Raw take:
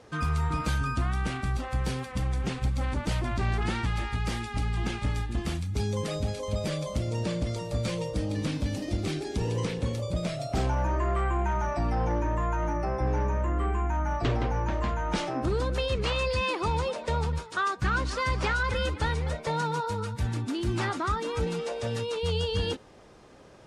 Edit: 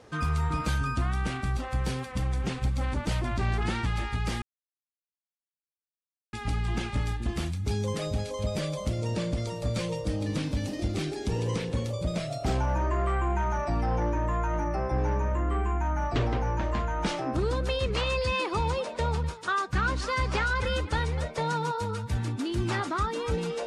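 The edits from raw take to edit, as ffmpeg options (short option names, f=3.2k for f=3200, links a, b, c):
-filter_complex "[0:a]asplit=2[a][b];[a]atrim=end=4.42,asetpts=PTS-STARTPTS,afade=t=out:st=4.416:d=0.004:c=hsin,apad=pad_dur=1.91[c];[b]atrim=start=4.42,asetpts=PTS-STARTPTS,afade=t=in:d=0.004:c=hsin[d];[c][d]concat=n=2:v=0:a=1"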